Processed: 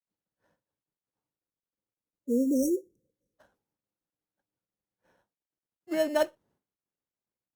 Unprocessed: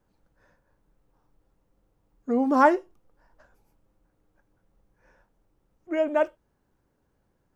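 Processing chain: high-pass 120 Hz 12 dB/octave; in parallel at -5 dB: sample-rate reducer 2.4 kHz, jitter 0%; on the sum: expander -56 dBFS; spectral selection erased 1.47–3.37 s, 560–5500 Hz; trim -5.5 dB; Opus 64 kbps 48 kHz

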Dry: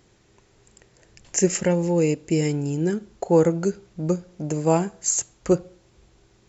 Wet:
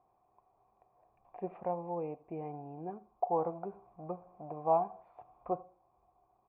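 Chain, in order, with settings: 3.40–5.50 s: companding laws mixed up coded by mu; cascade formant filter a; delay 81 ms -22.5 dB; trim +4.5 dB

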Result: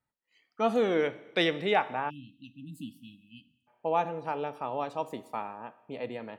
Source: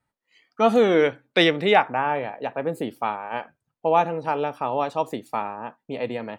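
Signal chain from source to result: Schroeder reverb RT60 1.1 s, combs from 28 ms, DRR 16 dB; spectral selection erased 2.10–3.68 s, 320–2500 Hz; trim -8.5 dB

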